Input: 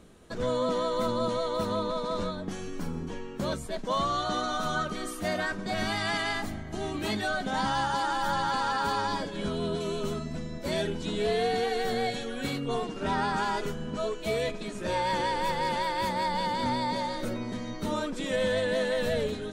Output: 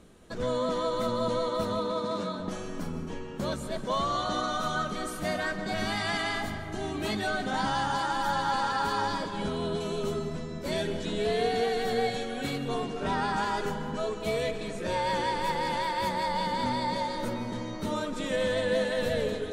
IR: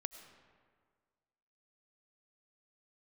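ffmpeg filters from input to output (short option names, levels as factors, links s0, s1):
-filter_complex "[0:a]asettb=1/sr,asplit=3[s0][s1][s2];[s0]atrim=end=1.794[s3];[s1]atrim=start=1.79:end=2.4,asetpts=PTS-STARTPTS,afade=t=in:d=0.004:c=qsin,afade=t=out:st=0.606:d=0.004:c=qsin,highpass=f=140:w=0.5412,highpass=f=140:w=1.3066[s4];[s2]atrim=start=2.396[s5];[s3][s4]acrossfade=d=0.004:c1=hsin:c2=qsin[s6];[s6][s5]acrossfade=d=0.004:c1=qsin:c2=hsin[s7];[1:a]atrim=start_sample=2205,asetrate=28665,aresample=44100[s8];[s7][s8]afir=irnorm=-1:irlink=0"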